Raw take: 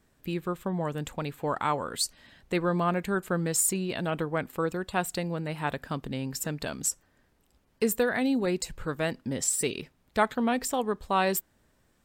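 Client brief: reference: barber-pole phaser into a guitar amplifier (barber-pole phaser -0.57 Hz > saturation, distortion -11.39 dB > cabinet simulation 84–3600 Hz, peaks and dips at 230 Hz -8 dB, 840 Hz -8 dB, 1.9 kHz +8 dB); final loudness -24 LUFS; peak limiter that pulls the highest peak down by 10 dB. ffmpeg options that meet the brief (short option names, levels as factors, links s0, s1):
-filter_complex "[0:a]alimiter=limit=0.0891:level=0:latency=1,asplit=2[s0][s1];[s1]afreqshift=-0.57[s2];[s0][s2]amix=inputs=2:normalize=1,asoftclip=threshold=0.0237,highpass=84,equalizer=f=230:t=q:w=4:g=-8,equalizer=f=840:t=q:w=4:g=-8,equalizer=f=1900:t=q:w=4:g=8,lowpass=f=3600:w=0.5412,lowpass=f=3600:w=1.3066,volume=7.08"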